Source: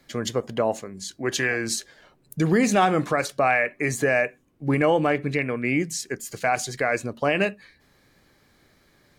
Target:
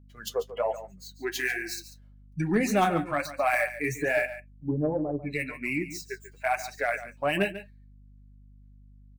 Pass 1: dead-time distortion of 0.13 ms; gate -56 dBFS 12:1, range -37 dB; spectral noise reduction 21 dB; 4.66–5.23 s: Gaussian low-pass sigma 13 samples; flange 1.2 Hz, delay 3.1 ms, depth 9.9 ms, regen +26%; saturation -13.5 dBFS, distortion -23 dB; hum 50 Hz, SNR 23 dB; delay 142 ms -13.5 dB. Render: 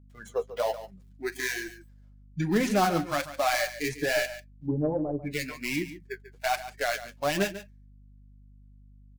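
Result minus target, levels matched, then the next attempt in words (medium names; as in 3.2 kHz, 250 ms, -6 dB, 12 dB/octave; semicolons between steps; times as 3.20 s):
dead-time distortion: distortion +8 dB
dead-time distortion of 0.044 ms; gate -56 dBFS 12:1, range -37 dB; spectral noise reduction 21 dB; 4.66–5.23 s: Gaussian low-pass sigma 13 samples; flange 1.2 Hz, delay 3.1 ms, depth 9.9 ms, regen +26%; saturation -13.5 dBFS, distortion -23 dB; hum 50 Hz, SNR 23 dB; delay 142 ms -13.5 dB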